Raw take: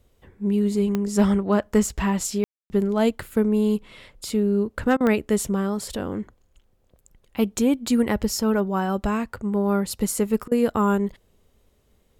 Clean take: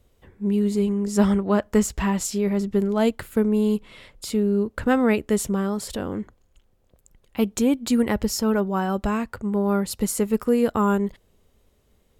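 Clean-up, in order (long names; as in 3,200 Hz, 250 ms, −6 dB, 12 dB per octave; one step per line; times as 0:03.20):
clipped peaks rebuilt −8 dBFS
click removal
ambience match 0:02.44–0:02.70
repair the gap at 0:04.97/0:10.48, 34 ms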